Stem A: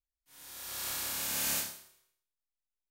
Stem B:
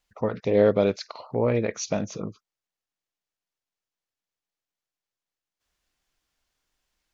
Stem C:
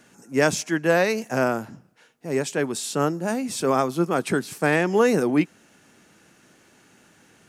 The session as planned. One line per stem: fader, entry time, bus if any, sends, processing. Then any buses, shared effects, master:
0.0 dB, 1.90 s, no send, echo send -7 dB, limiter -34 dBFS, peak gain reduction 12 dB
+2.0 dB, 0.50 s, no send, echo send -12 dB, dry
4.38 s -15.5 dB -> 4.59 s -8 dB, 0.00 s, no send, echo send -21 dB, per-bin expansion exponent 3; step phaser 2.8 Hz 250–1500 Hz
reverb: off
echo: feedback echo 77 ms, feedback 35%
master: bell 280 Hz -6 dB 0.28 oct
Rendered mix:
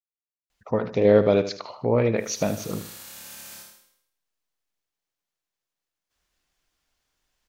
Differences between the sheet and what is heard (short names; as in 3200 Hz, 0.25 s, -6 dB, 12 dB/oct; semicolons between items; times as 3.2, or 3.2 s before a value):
stem C: muted; master: missing bell 280 Hz -6 dB 0.28 oct